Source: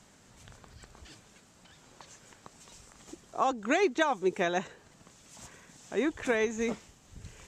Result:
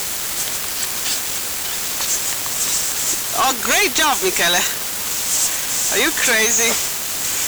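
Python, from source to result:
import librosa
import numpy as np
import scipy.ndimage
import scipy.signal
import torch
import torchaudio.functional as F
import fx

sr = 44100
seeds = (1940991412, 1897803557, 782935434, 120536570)

y = np.diff(x, prepend=0.0)
y = fx.quant_dither(y, sr, seeds[0], bits=10, dither='triangular')
y = fx.fuzz(y, sr, gain_db=65.0, gate_db=-56.0)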